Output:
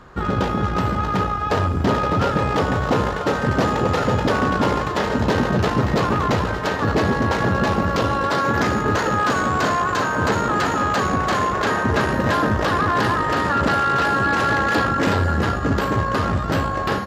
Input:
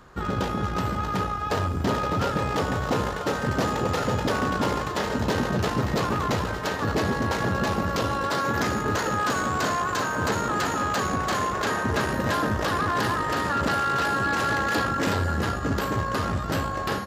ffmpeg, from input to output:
-af "highshelf=f=6100:g=-11,volume=2"

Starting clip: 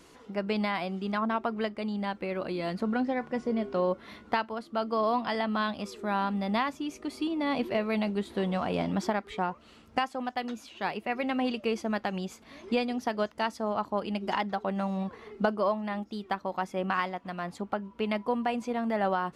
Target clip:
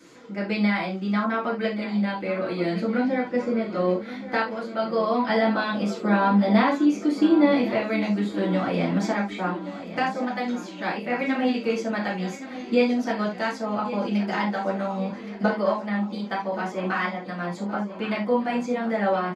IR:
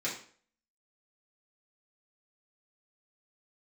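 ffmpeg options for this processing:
-filter_complex "[0:a]asettb=1/sr,asplit=3[s0][s1][s2];[s0]atrim=end=5.284[s3];[s1]atrim=start=5.28:end=7.51,asetpts=PTS-STARTPTS,afade=t=in:d=0.004:c=qsin,afade=t=out:st=2.226:d=0.004:c=qsin,equalizer=f=380:w=0.41:g=6.5[s4];[s2]atrim=start=7.506[s5];[s3][s4]acrossfade=d=0.004:c1=hsin:c2=qsin[s6];[s6][s5]acrossfade=d=0.004:c1=qsin:c2=hsin,aecho=1:1:1122|2244|3366|4488|5610:0.2|0.108|0.0582|0.0314|0.017[s7];[1:a]atrim=start_sample=2205,atrim=end_sample=3969[s8];[s7][s8]afir=irnorm=-1:irlink=0"

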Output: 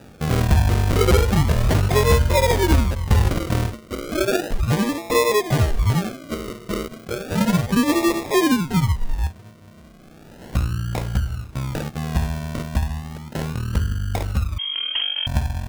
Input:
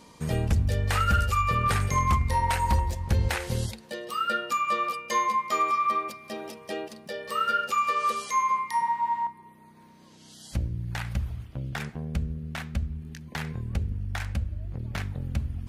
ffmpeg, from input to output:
-filter_complex "[0:a]acrusher=samples=41:mix=1:aa=0.000001:lfo=1:lforange=24.6:lforate=0.34,asettb=1/sr,asplit=3[s0][s1][s2];[s0]atrim=end=14.584[s3];[s1]atrim=start=14.58:end=15.27,asetpts=PTS-STARTPTS,afade=t=in:d=0.004:c=qsin,afade=t=out:st=0.686:d=0.004:c=qsin,lowpass=f=2800:t=q:w=0.5098,lowpass=f=2800:t=q:w=0.6013,lowpass=f=2800:t=q:w=0.9,lowpass=f=2800:t=q:w=2.563,afreqshift=-3300[s4];[s2]atrim=start=15.266[s5];[s3][s4]acrossfade=d=0.004:c1=hsin:c2=qsin[s6];[s6][s5]acrossfade=d=0.004:c1=qsin:c2=hsin,volume=2.37"

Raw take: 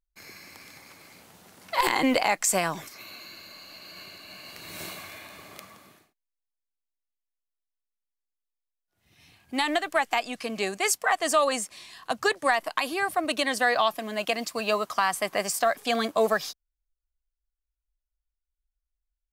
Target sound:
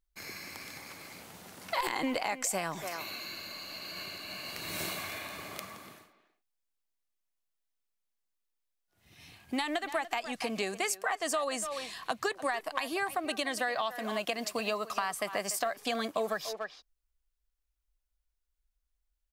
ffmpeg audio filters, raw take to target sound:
-filter_complex "[0:a]asplit=2[s0][s1];[s1]adelay=290,highpass=300,lowpass=3400,asoftclip=type=hard:threshold=0.141,volume=0.2[s2];[s0][s2]amix=inputs=2:normalize=0,acompressor=threshold=0.02:ratio=4,volume=1.41"

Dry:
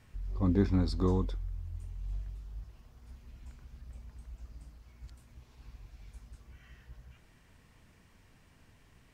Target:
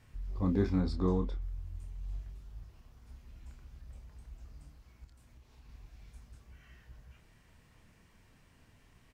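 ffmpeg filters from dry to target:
-filter_complex "[0:a]asettb=1/sr,asplit=3[s0][s1][s2];[s0]atrim=end=0.804[s3];[s1]atrim=start=0.8:end=1.42,asetpts=PTS-STARTPTS,afade=t=in:d=0.004:c=qsin,afade=t=out:st=0.616:d=0.004:c=qsin,aemphasis=mode=reproduction:type=cd[s4];[s2]atrim=start=1.416[s5];[s3][s4]acrossfade=d=0.004:c1=hsin:c2=qsin[s6];[s6][s5]acrossfade=d=0.004:c1=qsin:c2=hsin,asettb=1/sr,asplit=3[s7][s8][s9];[s7]atrim=end=5.044[s10];[s8]atrim=start=5.04:end=5.69,asetpts=PTS-STARTPTS,afade=t=in:d=0.004:c=qsin,afade=t=out:st=0.646:d=0.004:c=qsin,acompressor=threshold=0.00282:ratio=6[s11];[s9]atrim=start=5.686[s12];[s10][s11]acrossfade=d=0.004:c1=hsin:c2=qsin[s13];[s13][s12]acrossfade=d=0.004:c1=qsin:c2=hsin,asplit=2[s14][s15];[s15]adelay=28,volume=0.447[s16];[s14][s16]amix=inputs=2:normalize=0,volume=0.794"

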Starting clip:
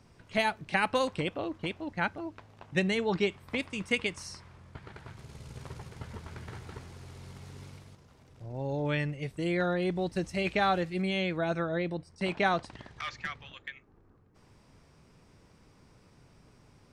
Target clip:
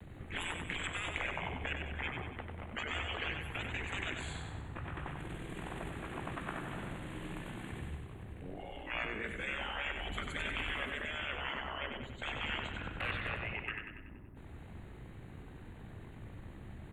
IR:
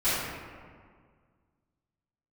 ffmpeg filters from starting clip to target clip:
-filter_complex "[0:a]afftfilt=real='re*lt(hypot(re,im),0.0316)':imag='im*lt(hypot(re,im),0.0316)':win_size=1024:overlap=0.75,acrossover=split=150|760|1500[s0][s1][s2][s3];[s1]alimiter=level_in=15.8:limit=0.0631:level=0:latency=1:release=56,volume=0.0631[s4];[s2]aeval=exprs='val(0)*sin(2*PI*76*n/s)':c=same[s5];[s0][s4][s5][s3]amix=inputs=4:normalize=0,asetrate=35002,aresample=44100,atempo=1.25992,asuperstop=centerf=5300:order=4:qfactor=0.83,aecho=1:1:95|190|285|380|475|570|665:0.531|0.276|0.144|0.0746|0.0388|0.0202|0.0105,volume=3.16"

